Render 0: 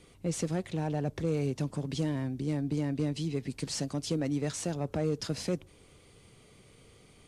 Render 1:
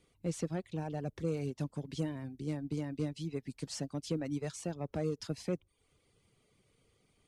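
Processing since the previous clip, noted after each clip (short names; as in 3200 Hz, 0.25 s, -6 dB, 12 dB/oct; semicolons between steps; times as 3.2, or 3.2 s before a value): reverb removal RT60 0.6 s; upward expander 1.5:1, over -47 dBFS; gain -2.5 dB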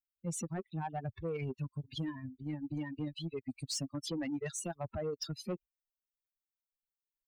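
per-bin expansion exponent 3; in parallel at +1.5 dB: negative-ratio compressor -46 dBFS, ratio -0.5; on the sum: soft clip -32 dBFS, distortion -19 dB; gain +3 dB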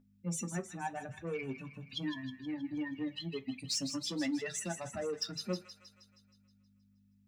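hum 50 Hz, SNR 17 dB; thin delay 0.158 s, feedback 57%, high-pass 1600 Hz, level -8 dB; reverb RT60 0.20 s, pre-delay 3 ms, DRR 6.5 dB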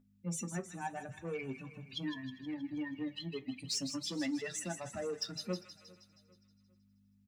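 feedback echo 0.4 s, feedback 39%, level -23 dB; gain -1.5 dB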